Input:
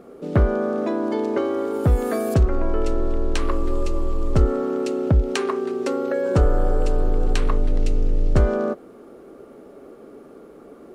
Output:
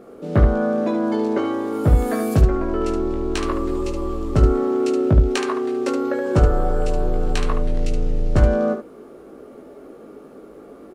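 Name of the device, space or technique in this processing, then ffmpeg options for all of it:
slapback doubling: -filter_complex "[0:a]asplit=3[a][b][c];[b]adelay=19,volume=-4dB[d];[c]adelay=73,volume=-6.5dB[e];[a][d][e]amix=inputs=3:normalize=0"

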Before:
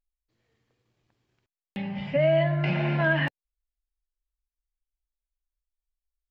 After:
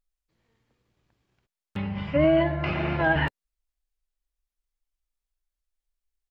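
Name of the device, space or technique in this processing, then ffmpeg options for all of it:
octave pedal: -filter_complex "[0:a]asettb=1/sr,asplit=3[a][b][c];[a]atrim=end=2.244[d];[b]atrim=start=2.24:end=3.16,asetpts=PTS-STARTPTS,afade=t=in:d=0.004:c=qsin,afade=t=out:st=0.916:d=0.004:c=qsin,highpass=190[e];[c]atrim=start=3.156[f];[d][e]acrossfade=d=0.004:c1=hsin:c2=qsin[g];[g][f]acrossfade=d=0.004:c1=qsin:c2=hsin,asplit=2[h][i];[i]asetrate=22050,aresample=44100,atempo=2,volume=-3dB[j];[h][j]amix=inputs=2:normalize=0"

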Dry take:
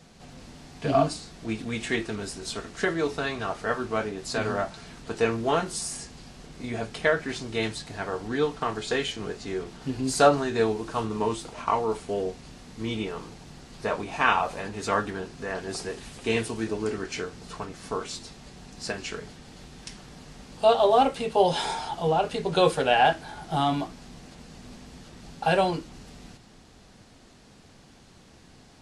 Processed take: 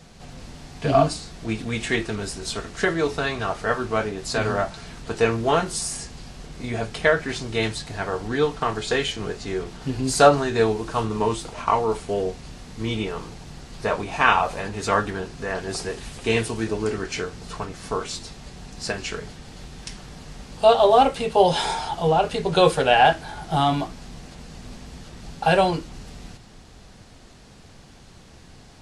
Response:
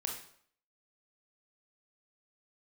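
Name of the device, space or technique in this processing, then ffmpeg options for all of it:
low shelf boost with a cut just above: -af "lowshelf=f=96:g=6,equalizer=f=260:t=o:w=0.88:g=-3,volume=4.5dB"

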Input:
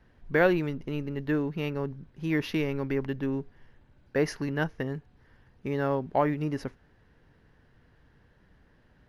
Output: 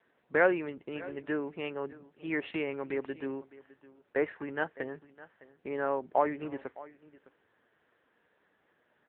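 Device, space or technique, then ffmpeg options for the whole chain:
satellite phone: -filter_complex "[0:a]asettb=1/sr,asplit=3[a][b][c];[a]atrim=end=4.954[d];[b]atrim=start=4.95:end=6.44,asetpts=PTS-STARTPTS,afade=t=in:d=0.004:c=qsin,afade=t=out:st=1.486:d=0.004:c=qsin,highpass=62[e];[c]atrim=start=6.436[f];[d][e]acrossfade=d=0.004:c1=hsin:c2=qsin[g];[g][f]acrossfade=d=0.004:c1=qsin:c2=hsin,highpass=400,lowpass=3.3k,aecho=1:1:609:0.112" -ar 8000 -c:a libopencore_amrnb -b:a 6700

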